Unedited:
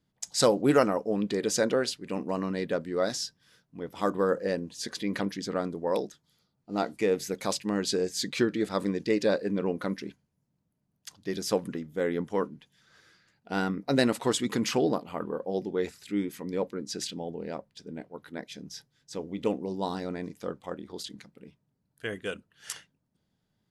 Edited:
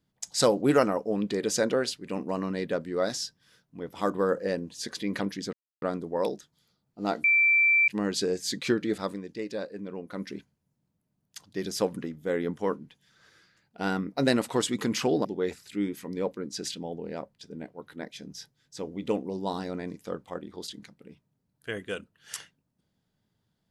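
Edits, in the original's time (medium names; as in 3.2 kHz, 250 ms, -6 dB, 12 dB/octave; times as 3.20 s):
5.53 s: insert silence 0.29 s
6.95–7.59 s: bleep 2.34 kHz -18 dBFS
8.68–10.02 s: dip -9 dB, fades 0.21 s
14.96–15.61 s: delete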